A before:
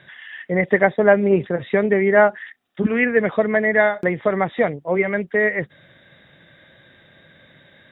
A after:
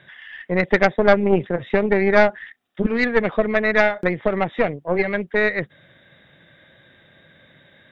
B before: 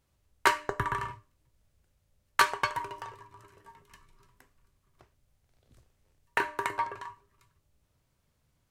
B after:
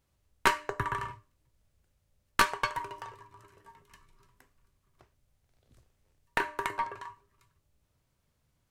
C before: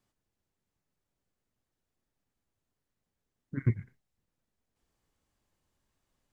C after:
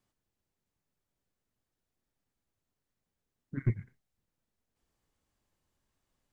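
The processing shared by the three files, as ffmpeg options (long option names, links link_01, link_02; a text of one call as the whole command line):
ffmpeg -i in.wav -af "aeval=exprs='0.891*(cos(1*acos(clip(val(0)/0.891,-1,1)))-cos(1*PI/2))+0.178*(cos(4*acos(clip(val(0)/0.891,-1,1)))-cos(4*PI/2))':channel_layout=same,volume=-1.5dB" out.wav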